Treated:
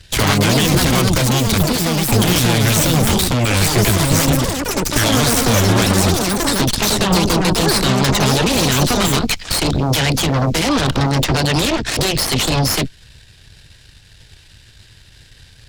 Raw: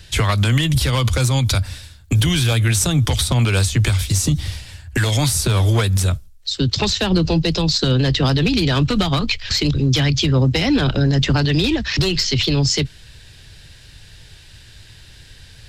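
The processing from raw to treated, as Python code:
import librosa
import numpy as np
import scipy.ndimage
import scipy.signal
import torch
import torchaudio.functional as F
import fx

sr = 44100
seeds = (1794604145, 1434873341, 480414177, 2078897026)

y = fx.cheby_harmonics(x, sr, harmonics=(6,), levels_db=(-7,), full_scale_db=-7.5)
y = fx.echo_pitch(y, sr, ms=103, semitones=6, count=2, db_per_echo=-3.0)
y = y * librosa.db_to_amplitude(-2.0)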